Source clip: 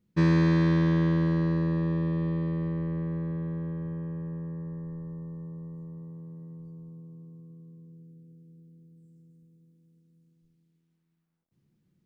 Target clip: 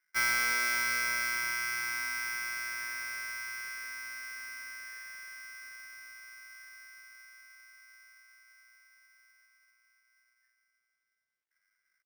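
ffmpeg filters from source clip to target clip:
-af "asetrate=64194,aresample=44100,atempo=0.686977,aecho=1:1:164:0.0944,aeval=exprs='val(0)*sgn(sin(2*PI*1800*n/s))':c=same,volume=-7.5dB"

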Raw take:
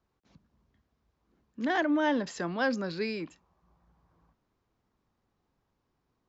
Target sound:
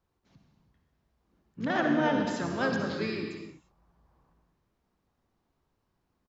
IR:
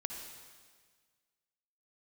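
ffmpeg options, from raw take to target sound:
-filter_complex "[0:a]asplit=3[a][b][c];[b]asetrate=22050,aresample=44100,atempo=2,volume=-12dB[d];[c]asetrate=35002,aresample=44100,atempo=1.25992,volume=-6dB[e];[a][d][e]amix=inputs=3:normalize=0[f];[1:a]atrim=start_sample=2205,afade=t=out:st=0.4:d=0.01,atrim=end_sample=18081[g];[f][g]afir=irnorm=-1:irlink=0"

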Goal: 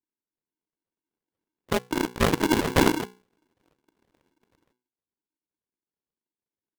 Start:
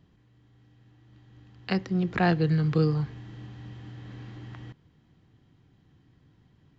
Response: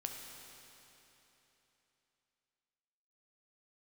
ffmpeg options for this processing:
-af "afftfilt=real='real(if(lt(b,1008),b+24*(1-2*mod(floor(b/24),2)),b),0)':imag='imag(if(lt(b,1008),b+24*(1-2*mod(floor(b/24),2)),b),0)':win_size=2048:overlap=0.75,highpass=f=48:p=1,aeval=exprs='0.251*(cos(1*acos(clip(val(0)/0.251,-1,1)))-cos(1*PI/2))+0.00708*(cos(2*acos(clip(val(0)/0.251,-1,1)))-cos(2*PI/2))+0.0355*(cos(7*acos(clip(val(0)/0.251,-1,1)))-cos(7*PI/2))':c=same,aresample=8000,acrusher=samples=25:mix=1:aa=0.000001:lfo=1:lforange=25:lforate=2.1,aresample=44100,bandreject=f=60:t=h:w=6,bandreject=f=120:t=h:w=6,bandreject=f=180:t=h:w=6,aeval=exprs='val(0)*sgn(sin(2*PI*310*n/s))':c=same,volume=2dB"

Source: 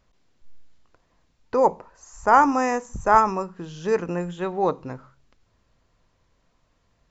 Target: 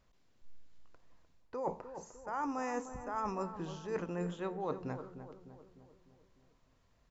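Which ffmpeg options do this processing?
-filter_complex "[0:a]areverse,acompressor=threshold=-28dB:ratio=16,areverse,asplit=2[a][b];[b]adelay=302,lowpass=f=1.2k:p=1,volume=-9.5dB,asplit=2[c][d];[d]adelay=302,lowpass=f=1.2k:p=1,volume=0.55,asplit=2[e][f];[f]adelay=302,lowpass=f=1.2k:p=1,volume=0.55,asplit=2[g][h];[h]adelay=302,lowpass=f=1.2k:p=1,volume=0.55,asplit=2[i][j];[j]adelay=302,lowpass=f=1.2k:p=1,volume=0.55,asplit=2[k][l];[l]adelay=302,lowpass=f=1.2k:p=1,volume=0.55[m];[a][c][e][g][i][k][m]amix=inputs=7:normalize=0,volume=-5.5dB"

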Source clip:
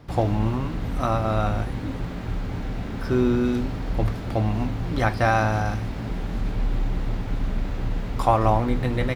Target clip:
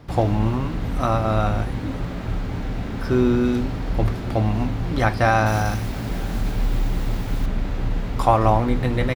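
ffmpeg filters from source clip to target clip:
-filter_complex "[0:a]asettb=1/sr,asplit=3[a][b][c];[a]atrim=end=5.464[d];[b]atrim=start=5.46:end=7.46,asetpts=PTS-STARTPTS,afade=t=in:d=0.004:c=qsin,afade=t=out:st=1.996:d=0.004:c=qsin,aemphasis=mode=production:type=50kf[e];[c]atrim=start=7.456[f];[d][e]acrossfade=d=0.004:c1=hsin:c2=qsin[g];[g][f]acrossfade=d=0.004:c1=qsin:c2=hsin,asplit=2[h][i];[i]aecho=0:1:908:0.0708[j];[h][j]amix=inputs=2:normalize=0,volume=2.5dB"

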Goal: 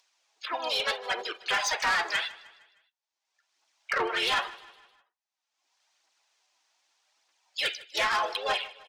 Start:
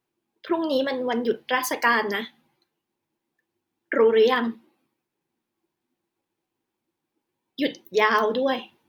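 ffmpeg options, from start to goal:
-filter_complex "[0:a]highpass=f=740:w=0.5412,highpass=f=740:w=1.3066,acrossover=split=5800[a][b];[b]acompressor=threshold=-56dB:ratio=4:attack=1:release=60[c];[a][c]amix=inputs=2:normalize=0,agate=range=-7dB:threshold=-54dB:ratio=16:detection=peak,afftdn=nr=28:nf=-48,firequalizer=gain_entry='entry(1100,0);entry(6100,13);entry(12000,-15)':delay=0.05:min_phase=1,acompressor=mode=upward:threshold=-42dB:ratio=2.5,alimiter=limit=-12.5dB:level=0:latency=1:release=481,aphaser=in_gain=1:out_gain=1:delay=3.7:decay=0.46:speed=0.82:type=triangular,asplit=3[d][e][f];[e]asetrate=35002,aresample=44100,atempo=1.25992,volume=-4dB[g];[f]asetrate=58866,aresample=44100,atempo=0.749154,volume=-15dB[h];[d][g][h]amix=inputs=3:normalize=0,asoftclip=type=tanh:threshold=-21dB,aecho=1:1:154|308|462|616:0.106|0.0508|0.0244|0.0117"

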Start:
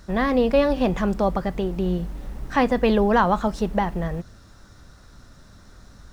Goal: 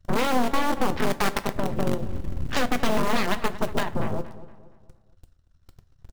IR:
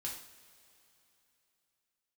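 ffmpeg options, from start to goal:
-filter_complex "[0:a]afwtdn=0.0282,equalizer=f=2.9k:t=o:w=0.33:g=9.5,asplit=2[a][b];[b]acrusher=bits=4:dc=4:mix=0:aa=0.000001,volume=-7.5dB[c];[a][c]amix=inputs=2:normalize=0,asettb=1/sr,asplit=3[d][e][f];[d]atrim=end=1.104[g];[e]atrim=start=1.1:end=1.52,asetpts=PTS-STARTPTS,afade=t=in:d=0.004:c=qsin,afade=t=out:st=0.416:d=0.004:c=qsin,aeval=exprs='0.422*(cos(1*acos(clip(val(0)/0.422,-1,1)))-cos(1*PI/2))+0.0668*(cos(7*acos(clip(val(0)/0.422,-1,1)))-cos(7*PI/2))':c=same[h];[f]atrim=start=1.516[i];[g][h]acrossfade=d=0.004:c1=hsin:c2=qsin[j];[j][i]acrossfade=d=0.004:c1=qsin:c2=hsin,acompressor=threshold=-24dB:ratio=12,aeval=exprs='0.251*(cos(1*acos(clip(val(0)/0.251,-1,1)))-cos(1*PI/2))+0.0447*(cos(7*acos(clip(val(0)/0.251,-1,1)))-cos(7*PI/2))+0.1*(cos(8*acos(clip(val(0)/0.251,-1,1)))-cos(8*PI/2))':c=same,asplit=2[k][l];[l]adelay=234,lowpass=f=2.8k:p=1,volume=-15.5dB,asplit=2[m][n];[n]adelay=234,lowpass=f=2.8k:p=1,volume=0.43,asplit=2[o][p];[p]adelay=234,lowpass=f=2.8k:p=1,volume=0.43,asplit=2[q][r];[r]adelay=234,lowpass=f=2.8k:p=1,volume=0.43[s];[k][m][o][q][s]amix=inputs=5:normalize=0,asplit=2[t][u];[1:a]atrim=start_sample=2205,asetrate=83790,aresample=44100,adelay=8[v];[u][v]afir=irnorm=-1:irlink=0,volume=-4.5dB[w];[t][w]amix=inputs=2:normalize=0,volume=-2dB"

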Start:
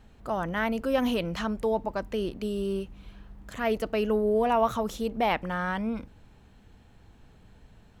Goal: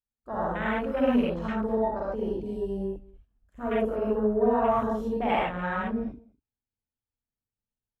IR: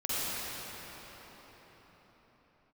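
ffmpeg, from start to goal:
-filter_complex "[0:a]agate=range=-26dB:threshold=-42dB:ratio=16:detection=peak,asettb=1/sr,asplit=3[a][b][c];[a]atrim=end=2.734[d];[b]atrim=start=2.73:end=4.74,asetpts=PTS-STARTPTS,afade=t=in:d=0.004:c=qsin,afade=t=out:st=2.006:d=0.004:c=qsin,equalizer=f=4.3k:t=o:w=0.76:g=-9[e];[c]atrim=start=4.736[f];[d][e]acrossfade=d=0.004:c1=hsin:c2=qsin[g];[g][f]acrossfade=d=0.004:c1=qsin:c2=hsin[h];[1:a]atrim=start_sample=2205,afade=t=out:st=0.2:d=0.01,atrim=end_sample=9261[i];[h][i]afir=irnorm=-1:irlink=0,afwtdn=0.0282,aecho=1:1:206:0.0631,volume=-3.5dB"

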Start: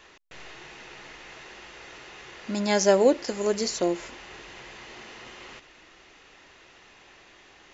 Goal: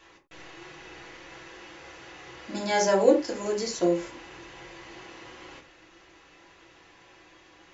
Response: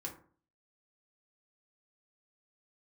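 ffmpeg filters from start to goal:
-filter_complex "[0:a]asettb=1/sr,asplit=3[a][b][c];[a]atrim=end=0.574[d];[b]atrim=start=0.57:end=2.86,asetpts=PTS-STARTPTS,afade=t=in:d=0.004:c=qsin,afade=t=out:st=2.286:d=0.004:c=qsin,asplit=2[e][f];[f]adelay=46,volume=-6.5dB[g];[e][g]amix=inputs=2:normalize=0,atrim=end_sample=100989[h];[c]atrim=start=2.856[i];[d][h]acrossfade=d=0.004:c1=hsin:c2=qsin[j];[j][i]acrossfade=d=0.004:c1=qsin:c2=hsin[k];[1:a]atrim=start_sample=2205,atrim=end_sample=4410[l];[k][l]afir=irnorm=-1:irlink=0"

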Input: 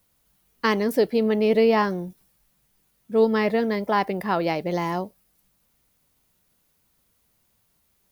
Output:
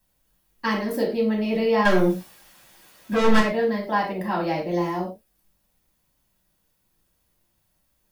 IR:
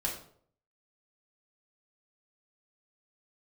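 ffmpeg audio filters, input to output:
-filter_complex "[0:a]asettb=1/sr,asplit=3[a][b][c];[a]atrim=end=1.854[d];[b]atrim=start=1.85:end=3.4,asetpts=PTS-STARTPTS,afade=t=in:d=0.004:c=qsin,afade=t=out:st=1.546:d=0.004:c=qsin,asplit=2[e][f];[f]highpass=f=720:p=1,volume=30dB,asoftclip=type=tanh:threshold=-8.5dB[g];[e][g]amix=inputs=2:normalize=0,lowpass=f=4.8k:p=1,volume=-6dB[h];[c]atrim=start=3.396[i];[d][h]acrossfade=d=0.004:c1=hsin:c2=qsin[j];[j][i]acrossfade=d=0.004:c1=qsin:c2=hsin[k];[1:a]atrim=start_sample=2205,afade=t=out:st=0.17:d=0.01,atrim=end_sample=7938[l];[k][l]afir=irnorm=-1:irlink=0,volume=-6dB"

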